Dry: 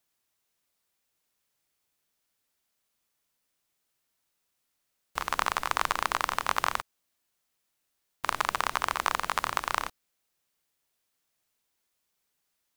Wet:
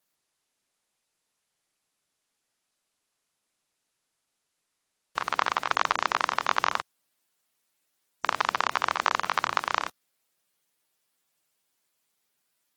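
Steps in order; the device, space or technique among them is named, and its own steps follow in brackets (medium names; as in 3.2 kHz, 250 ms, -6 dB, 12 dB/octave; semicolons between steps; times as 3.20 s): noise-suppressed video call (high-pass 120 Hz 12 dB/octave; spectral gate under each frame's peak -25 dB strong; trim +2.5 dB; Opus 16 kbps 48 kHz)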